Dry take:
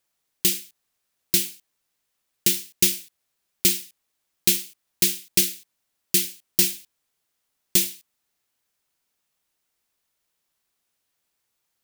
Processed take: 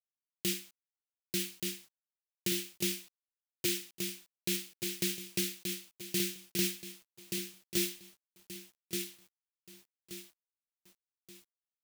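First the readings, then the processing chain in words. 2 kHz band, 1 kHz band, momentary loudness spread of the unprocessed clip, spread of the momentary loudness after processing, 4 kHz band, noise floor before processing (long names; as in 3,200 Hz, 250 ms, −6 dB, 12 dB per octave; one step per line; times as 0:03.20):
−7.0 dB, can't be measured, 10 LU, 15 LU, −9.5 dB, −77 dBFS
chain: high-pass filter 69 Hz 24 dB per octave
high-shelf EQ 3,400 Hz −11 dB
brickwall limiter −20 dBFS, peak gain reduction 10 dB
on a send: repeating echo 1,178 ms, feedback 34%, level −4 dB
on the sum: bit reduction 10 bits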